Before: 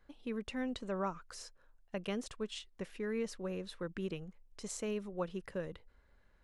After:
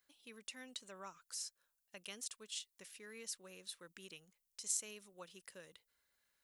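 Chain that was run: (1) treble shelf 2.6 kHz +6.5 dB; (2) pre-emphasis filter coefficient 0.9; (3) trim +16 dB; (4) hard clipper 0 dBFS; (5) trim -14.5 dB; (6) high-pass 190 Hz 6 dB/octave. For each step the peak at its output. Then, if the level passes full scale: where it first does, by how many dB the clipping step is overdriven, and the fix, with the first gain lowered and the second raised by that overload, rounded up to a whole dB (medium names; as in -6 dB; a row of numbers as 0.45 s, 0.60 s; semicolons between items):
-21.0 dBFS, -21.0 dBFS, -5.0 dBFS, -5.0 dBFS, -19.5 dBFS, -19.5 dBFS; nothing clips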